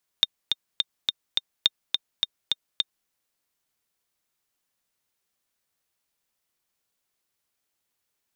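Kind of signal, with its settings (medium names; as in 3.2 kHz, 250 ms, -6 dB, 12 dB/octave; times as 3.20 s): metronome 210 bpm, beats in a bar 5, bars 2, 3.65 kHz, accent 4.5 dB -4.5 dBFS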